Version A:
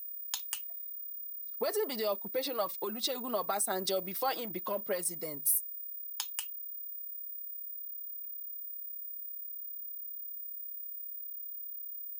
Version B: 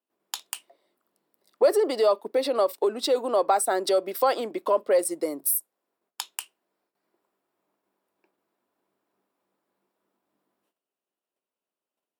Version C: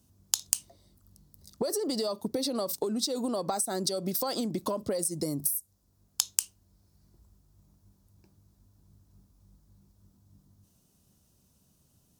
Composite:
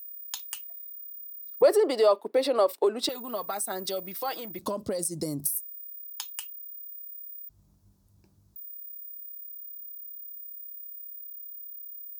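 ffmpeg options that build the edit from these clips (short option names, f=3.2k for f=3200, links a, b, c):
-filter_complex "[2:a]asplit=2[a][b];[0:a]asplit=4[c][d][e][f];[c]atrim=end=1.622[g];[1:a]atrim=start=1.618:end=3.092[h];[d]atrim=start=3.088:end=4.592[i];[a]atrim=start=4.588:end=5.562[j];[e]atrim=start=5.558:end=7.492[k];[b]atrim=start=7.488:end=8.562[l];[f]atrim=start=8.558[m];[g][h]acrossfade=d=0.004:c1=hsin:c2=hsin[n];[n][i]acrossfade=d=0.004:c1=hsin:c2=hsin[o];[o][j]acrossfade=d=0.004:c1=hsin:c2=hsin[p];[p][k]acrossfade=d=0.004:c1=hsin:c2=hsin[q];[q][l]acrossfade=d=0.004:c1=hsin:c2=hsin[r];[r][m]acrossfade=d=0.004:c1=hsin:c2=hsin"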